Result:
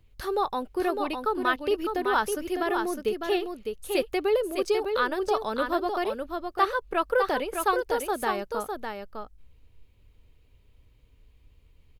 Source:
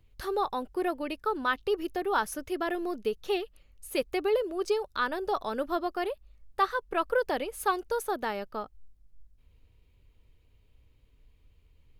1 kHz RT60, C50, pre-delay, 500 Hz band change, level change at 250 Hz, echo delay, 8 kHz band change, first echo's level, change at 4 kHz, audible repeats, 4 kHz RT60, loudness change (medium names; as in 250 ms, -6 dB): no reverb, no reverb, no reverb, +3.5 dB, +3.5 dB, 605 ms, +3.5 dB, -5.5 dB, +3.5 dB, 1, no reverb, +3.5 dB